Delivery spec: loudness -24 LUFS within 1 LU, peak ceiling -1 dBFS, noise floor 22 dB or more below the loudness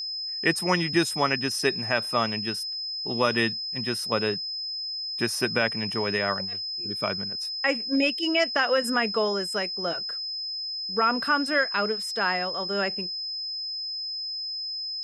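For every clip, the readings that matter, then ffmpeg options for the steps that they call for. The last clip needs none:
steady tone 5100 Hz; tone level -30 dBFS; loudness -26.0 LUFS; peak -9.0 dBFS; loudness target -24.0 LUFS
-> -af "bandreject=f=5.1k:w=30"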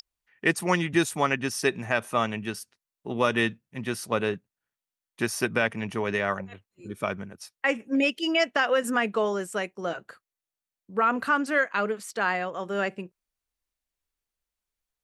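steady tone none; loudness -27.0 LUFS; peak -9.0 dBFS; loudness target -24.0 LUFS
-> -af "volume=3dB"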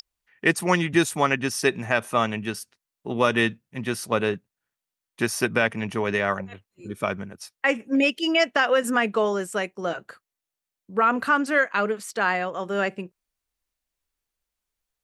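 loudness -24.0 LUFS; peak -6.0 dBFS; noise floor -87 dBFS

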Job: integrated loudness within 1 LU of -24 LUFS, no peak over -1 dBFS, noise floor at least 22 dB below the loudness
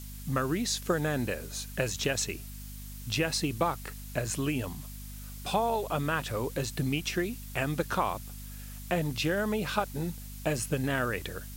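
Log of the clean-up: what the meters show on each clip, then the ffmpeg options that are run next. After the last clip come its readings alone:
hum 50 Hz; harmonics up to 250 Hz; hum level -40 dBFS; noise floor -43 dBFS; noise floor target -54 dBFS; loudness -31.5 LUFS; peak -12.0 dBFS; loudness target -24.0 LUFS
-> -af "bandreject=f=50:t=h:w=4,bandreject=f=100:t=h:w=4,bandreject=f=150:t=h:w=4,bandreject=f=200:t=h:w=4,bandreject=f=250:t=h:w=4"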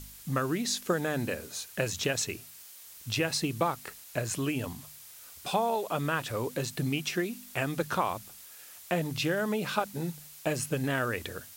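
hum none; noise floor -50 dBFS; noise floor target -54 dBFS
-> -af "afftdn=nr=6:nf=-50"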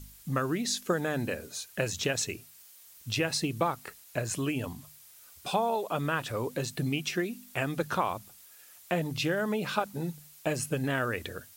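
noise floor -54 dBFS; loudness -31.5 LUFS; peak -12.5 dBFS; loudness target -24.0 LUFS
-> -af "volume=7.5dB"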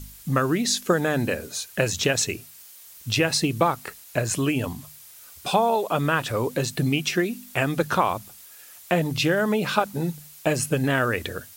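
loudness -24.0 LUFS; peak -5.0 dBFS; noise floor -47 dBFS

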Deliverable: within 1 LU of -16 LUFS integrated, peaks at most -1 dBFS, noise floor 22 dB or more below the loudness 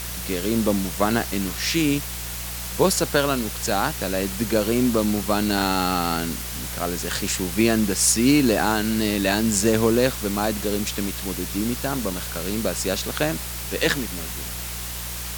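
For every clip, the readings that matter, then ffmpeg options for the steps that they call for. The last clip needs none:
hum 60 Hz; harmonics up to 180 Hz; hum level -34 dBFS; noise floor -31 dBFS; noise floor target -45 dBFS; loudness -22.5 LUFS; peak -5.0 dBFS; loudness target -16.0 LUFS
-> -af "bandreject=f=60:t=h:w=4,bandreject=f=120:t=h:w=4,bandreject=f=180:t=h:w=4"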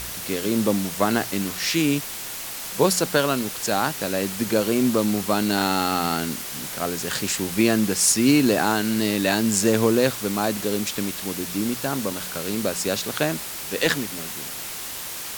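hum none; noise floor -33 dBFS; noise floor target -45 dBFS
-> -af "afftdn=nr=12:nf=-33"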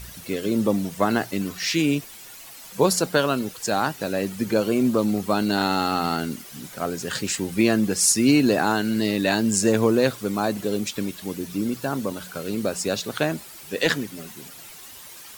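noise floor -43 dBFS; noise floor target -45 dBFS
-> -af "afftdn=nr=6:nf=-43"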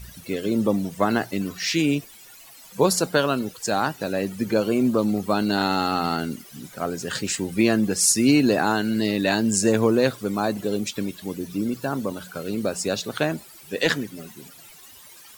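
noise floor -47 dBFS; loudness -23.0 LUFS; peak -6.0 dBFS; loudness target -16.0 LUFS
-> -af "volume=7dB,alimiter=limit=-1dB:level=0:latency=1"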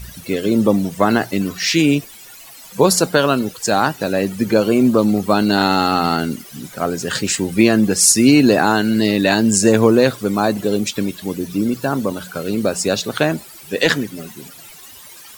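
loudness -16.5 LUFS; peak -1.0 dBFS; noise floor -40 dBFS

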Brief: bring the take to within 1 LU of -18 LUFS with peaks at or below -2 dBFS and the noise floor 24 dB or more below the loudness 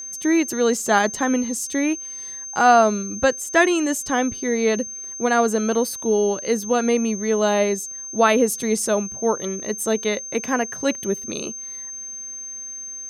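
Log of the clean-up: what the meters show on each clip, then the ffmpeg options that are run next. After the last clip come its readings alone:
steady tone 6300 Hz; tone level -31 dBFS; loudness -21.5 LUFS; peak -3.0 dBFS; loudness target -18.0 LUFS
-> -af "bandreject=f=6.3k:w=30"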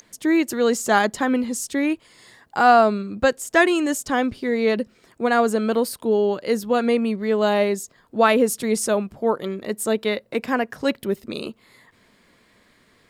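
steady tone none; loudness -21.0 LUFS; peak -3.0 dBFS; loudness target -18.0 LUFS
-> -af "volume=3dB,alimiter=limit=-2dB:level=0:latency=1"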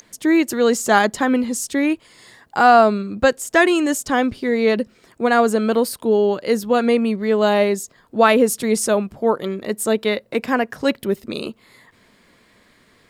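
loudness -18.5 LUFS; peak -2.0 dBFS; noise floor -56 dBFS

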